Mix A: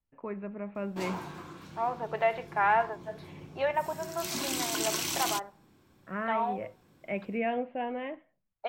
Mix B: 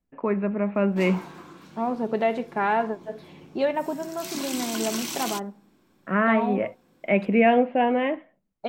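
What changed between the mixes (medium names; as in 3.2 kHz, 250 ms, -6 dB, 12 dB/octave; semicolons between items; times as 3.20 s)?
first voice +12.0 dB; second voice: remove Butterworth band-pass 1.4 kHz, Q 0.61; master: add resonant low shelf 150 Hz -6.5 dB, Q 1.5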